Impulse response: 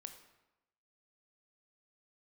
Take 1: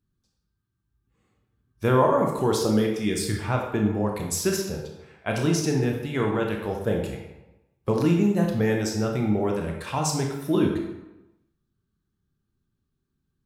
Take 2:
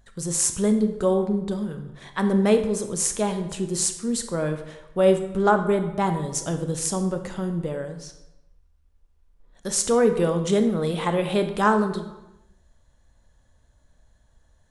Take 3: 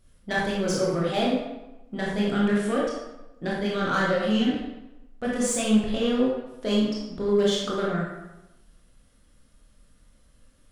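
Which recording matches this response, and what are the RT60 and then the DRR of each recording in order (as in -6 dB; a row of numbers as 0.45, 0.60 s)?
2; 1.0, 0.95, 1.0 s; 1.0, 7.0, -5.5 dB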